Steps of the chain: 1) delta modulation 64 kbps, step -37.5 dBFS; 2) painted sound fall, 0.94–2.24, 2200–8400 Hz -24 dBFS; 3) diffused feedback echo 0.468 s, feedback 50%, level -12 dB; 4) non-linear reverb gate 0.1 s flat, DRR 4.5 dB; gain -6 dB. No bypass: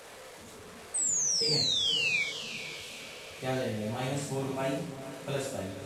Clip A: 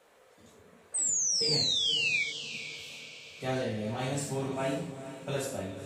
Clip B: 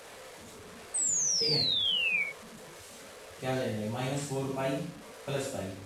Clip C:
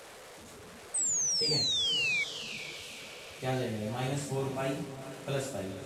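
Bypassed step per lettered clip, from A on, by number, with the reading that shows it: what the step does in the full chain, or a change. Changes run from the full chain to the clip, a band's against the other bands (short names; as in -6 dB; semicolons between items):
1, momentary loudness spread change -4 LU; 3, momentary loudness spread change +2 LU; 4, echo-to-direct -3.5 dB to -11.0 dB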